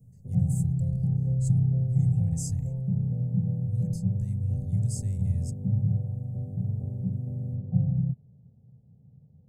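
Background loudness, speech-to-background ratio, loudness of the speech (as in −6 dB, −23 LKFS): −28.5 LKFS, −4.5 dB, −33.0 LKFS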